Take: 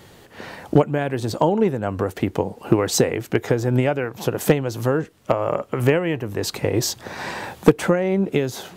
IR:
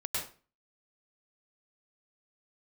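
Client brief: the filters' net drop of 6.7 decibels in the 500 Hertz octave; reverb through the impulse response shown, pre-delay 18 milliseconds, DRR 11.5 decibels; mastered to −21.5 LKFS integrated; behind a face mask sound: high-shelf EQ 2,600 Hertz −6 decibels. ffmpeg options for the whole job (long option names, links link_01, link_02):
-filter_complex "[0:a]equalizer=frequency=500:width_type=o:gain=-8,asplit=2[link_01][link_02];[1:a]atrim=start_sample=2205,adelay=18[link_03];[link_02][link_03]afir=irnorm=-1:irlink=0,volume=-16dB[link_04];[link_01][link_04]amix=inputs=2:normalize=0,highshelf=frequency=2600:gain=-6,volume=3.5dB"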